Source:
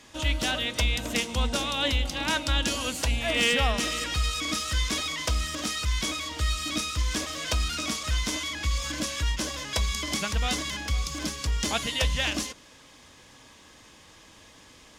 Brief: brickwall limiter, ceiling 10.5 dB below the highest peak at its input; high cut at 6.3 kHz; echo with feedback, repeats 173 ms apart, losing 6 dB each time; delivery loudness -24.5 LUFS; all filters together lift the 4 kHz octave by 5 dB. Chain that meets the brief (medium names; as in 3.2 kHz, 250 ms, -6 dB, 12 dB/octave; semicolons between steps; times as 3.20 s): low-pass 6.3 kHz; peaking EQ 4 kHz +7 dB; peak limiter -18.5 dBFS; feedback delay 173 ms, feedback 50%, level -6 dB; trim +2 dB